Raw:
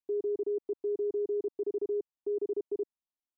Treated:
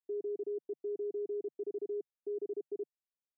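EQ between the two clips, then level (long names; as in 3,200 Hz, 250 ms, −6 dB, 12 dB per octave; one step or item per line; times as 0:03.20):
Chebyshev band-pass filter 140–730 Hz, order 4
−5.5 dB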